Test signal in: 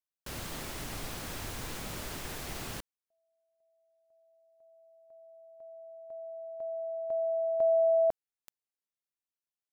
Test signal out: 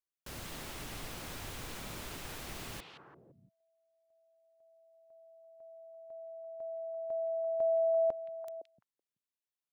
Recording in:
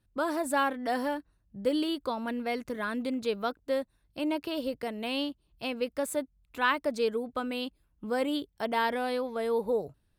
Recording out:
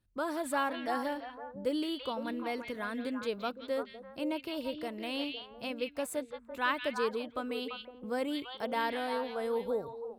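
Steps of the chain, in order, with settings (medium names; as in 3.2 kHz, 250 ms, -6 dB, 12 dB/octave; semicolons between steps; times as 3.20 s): repeats whose band climbs or falls 170 ms, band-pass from 2.9 kHz, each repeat -1.4 oct, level -2 dB; trim -4.5 dB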